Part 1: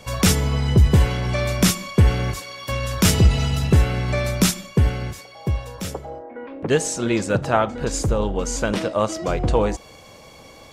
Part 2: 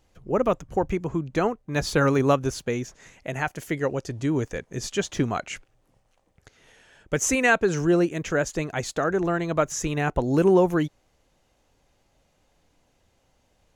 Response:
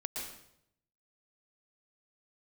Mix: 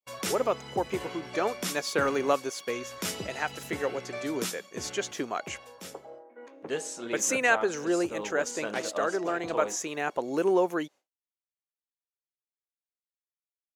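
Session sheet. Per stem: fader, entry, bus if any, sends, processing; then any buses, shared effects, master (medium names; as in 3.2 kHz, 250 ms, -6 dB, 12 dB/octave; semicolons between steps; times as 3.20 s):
-6.0 dB, 0.00 s, no send, expander -40 dBFS; level rider gain up to 6 dB; flange 0.24 Hz, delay 8.5 ms, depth 4.7 ms, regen -62%; auto duck -6 dB, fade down 0.60 s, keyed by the second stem
-3.5 dB, 0.00 s, no send, gate -52 dBFS, range -16 dB; tone controls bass -6 dB, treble +1 dB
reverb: none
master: expander -43 dBFS; high-pass 300 Hz 12 dB/octave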